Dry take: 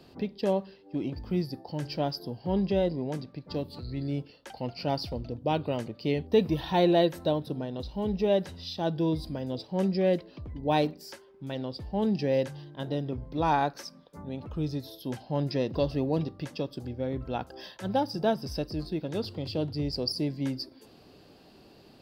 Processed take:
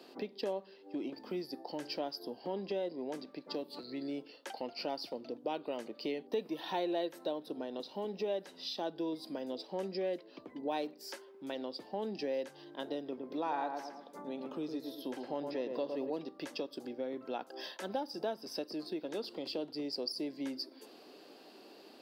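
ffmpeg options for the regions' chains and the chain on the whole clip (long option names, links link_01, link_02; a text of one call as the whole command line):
ffmpeg -i in.wav -filter_complex "[0:a]asettb=1/sr,asplit=3[link_01][link_02][link_03];[link_01]atrim=end=13.064[link_04];[link_02]atrim=start=13.06:end=16.1,asetpts=PTS-STARTPTS,afade=type=in:duration=0.004:curve=qsin,afade=type=out:start_time=3.036:duration=0.004:curve=qsin,acrossover=split=3400[link_05][link_06];[link_06]acompressor=threshold=-52dB:ratio=4:attack=1:release=60[link_07];[link_05][link_07]amix=inputs=2:normalize=0,asplit=2[link_08][link_09];[link_09]adelay=110,lowpass=frequency=1400:poles=1,volume=-5dB,asplit=2[link_10][link_11];[link_11]adelay=110,lowpass=frequency=1400:poles=1,volume=0.38,asplit=2[link_12][link_13];[link_13]adelay=110,lowpass=frequency=1400:poles=1,volume=0.38,asplit=2[link_14][link_15];[link_15]adelay=110,lowpass=frequency=1400:poles=1,volume=0.38,asplit=2[link_16][link_17];[link_17]adelay=110,lowpass=frequency=1400:poles=1,volume=0.38[link_18];[link_08][link_10][link_12][link_14][link_16][link_18]amix=inputs=6:normalize=0,atrim=end_sample=134064[link_19];[link_03]atrim=start=16.096[link_20];[link_04][link_19]acrossfade=duration=0.004:curve1=hsin:curve2=qsin[link_21];[link_21][link_20]acrossfade=duration=0.004:curve1=qsin:curve2=hsin,highpass=frequency=270:width=0.5412,highpass=frequency=270:width=1.3066,acompressor=threshold=-39dB:ratio=2.5,volume=1dB" out.wav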